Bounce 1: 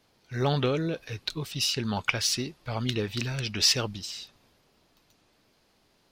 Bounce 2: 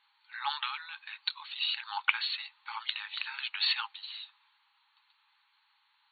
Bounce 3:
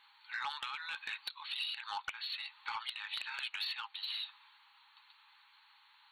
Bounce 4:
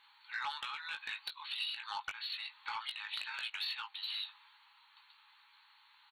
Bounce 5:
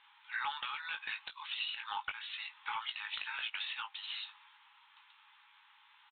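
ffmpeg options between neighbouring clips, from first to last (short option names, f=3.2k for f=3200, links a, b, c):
-af "afftfilt=real='re*between(b*sr/4096,800,4500)':imag='im*between(b*sr/4096,800,4500)':win_size=4096:overlap=0.75"
-af "acompressor=threshold=-41dB:ratio=20,asoftclip=type=tanh:threshold=-35dB,volume=6.5dB"
-filter_complex "[0:a]asplit=2[a][b];[b]adelay=19,volume=-7dB[c];[a][c]amix=inputs=2:normalize=0,volume=-1dB"
-filter_complex "[0:a]acrossover=split=1300[a][b];[a]acrusher=bits=6:mode=log:mix=0:aa=0.000001[c];[c][b]amix=inputs=2:normalize=0,aresample=8000,aresample=44100,volume=2dB"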